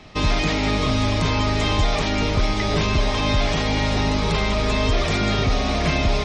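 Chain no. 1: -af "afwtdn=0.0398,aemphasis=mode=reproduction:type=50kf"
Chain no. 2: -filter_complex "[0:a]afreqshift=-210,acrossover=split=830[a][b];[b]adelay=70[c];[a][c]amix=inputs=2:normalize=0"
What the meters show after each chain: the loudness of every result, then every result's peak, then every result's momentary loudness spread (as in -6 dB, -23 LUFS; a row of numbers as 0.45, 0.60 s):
-22.5, -21.0 LUFS; -10.0, -7.0 dBFS; 1, 2 LU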